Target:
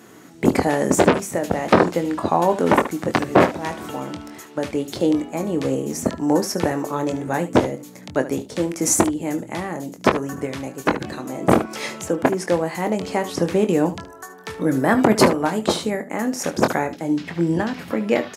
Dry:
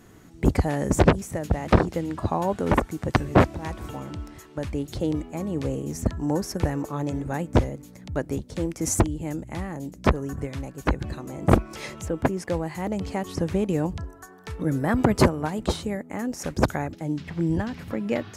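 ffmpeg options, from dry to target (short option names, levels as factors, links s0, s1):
-af "highpass=230,aecho=1:1:23|74:0.376|0.188,alimiter=level_in=2.66:limit=0.891:release=50:level=0:latency=1,volume=0.891"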